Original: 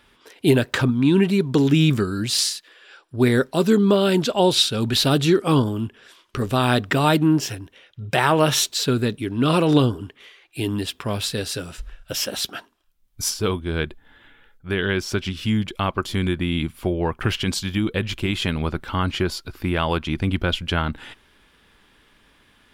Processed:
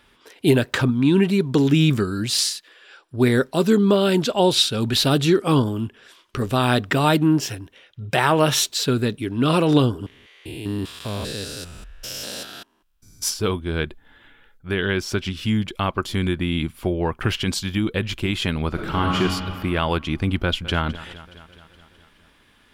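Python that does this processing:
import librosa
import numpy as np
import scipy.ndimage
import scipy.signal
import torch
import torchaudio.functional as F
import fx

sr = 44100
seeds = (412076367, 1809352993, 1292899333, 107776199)

y = fx.spec_steps(x, sr, hold_ms=200, at=(10.02, 13.22), fade=0.02)
y = fx.reverb_throw(y, sr, start_s=18.68, length_s=0.5, rt60_s=2.3, drr_db=-1.5)
y = fx.echo_throw(y, sr, start_s=20.42, length_s=0.41, ms=210, feedback_pct=65, wet_db=-16.0)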